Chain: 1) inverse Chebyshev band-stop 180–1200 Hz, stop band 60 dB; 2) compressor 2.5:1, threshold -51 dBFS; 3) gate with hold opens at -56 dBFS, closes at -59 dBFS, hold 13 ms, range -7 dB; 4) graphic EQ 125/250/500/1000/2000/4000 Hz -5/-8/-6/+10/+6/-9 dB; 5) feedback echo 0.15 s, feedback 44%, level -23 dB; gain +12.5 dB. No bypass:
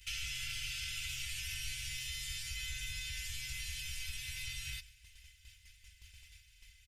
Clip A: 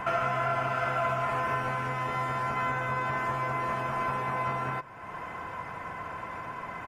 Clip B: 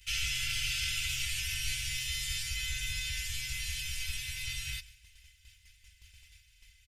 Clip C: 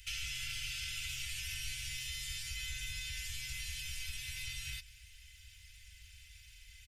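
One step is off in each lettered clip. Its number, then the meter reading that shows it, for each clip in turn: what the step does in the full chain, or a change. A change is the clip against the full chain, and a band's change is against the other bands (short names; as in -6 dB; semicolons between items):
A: 1, 1 kHz band +29.5 dB; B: 2, mean gain reduction 4.0 dB; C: 3, momentary loudness spread change -3 LU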